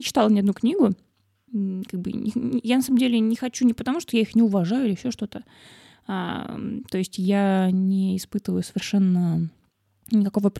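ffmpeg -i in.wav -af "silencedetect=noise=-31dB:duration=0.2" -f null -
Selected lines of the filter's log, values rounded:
silence_start: 0.93
silence_end: 1.54 | silence_duration: 0.60
silence_start: 5.38
silence_end: 6.09 | silence_duration: 0.71
silence_start: 9.47
silence_end: 10.06 | silence_duration: 0.59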